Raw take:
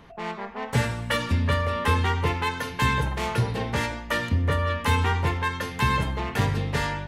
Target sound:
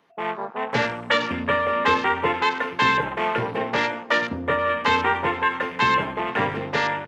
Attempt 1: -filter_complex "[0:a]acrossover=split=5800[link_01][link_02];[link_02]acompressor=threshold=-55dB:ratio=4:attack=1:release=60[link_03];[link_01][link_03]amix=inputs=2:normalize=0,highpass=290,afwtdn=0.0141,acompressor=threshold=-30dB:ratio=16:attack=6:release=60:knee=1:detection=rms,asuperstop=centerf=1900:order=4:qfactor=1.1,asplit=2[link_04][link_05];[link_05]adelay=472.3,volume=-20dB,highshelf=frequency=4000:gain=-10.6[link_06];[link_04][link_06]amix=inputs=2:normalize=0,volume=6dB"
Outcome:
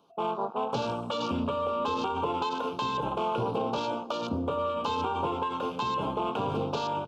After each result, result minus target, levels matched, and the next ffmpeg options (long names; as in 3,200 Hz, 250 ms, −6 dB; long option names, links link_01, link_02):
2,000 Hz band −13.0 dB; downward compressor: peak gain reduction +11 dB
-filter_complex "[0:a]acrossover=split=5800[link_01][link_02];[link_02]acompressor=threshold=-55dB:ratio=4:attack=1:release=60[link_03];[link_01][link_03]amix=inputs=2:normalize=0,highpass=290,afwtdn=0.0141,acompressor=threshold=-30dB:ratio=16:attack=6:release=60:knee=1:detection=rms,asplit=2[link_04][link_05];[link_05]adelay=472.3,volume=-20dB,highshelf=frequency=4000:gain=-10.6[link_06];[link_04][link_06]amix=inputs=2:normalize=0,volume=6dB"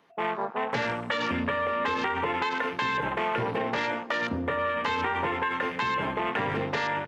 downward compressor: peak gain reduction +11 dB
-filter_complex "[0:a]acrossover=split=5800[link_01][link_02];[link_02]acompressor=threshold=-55dB:ratio=4:attack=1:release=60[link_03];[link_01][link_03]amix=inputs=2:normalize=0,highpass=290,afwtdn=0.0141,asplit=2[link_04][link_05];[link_05]adelay=472.3,volume=-20dB,highshelf=frequency=4000:gain=-10.6[link_06];[link_04][link_06]amix=inputs=2:normalize=0,volume=6dB"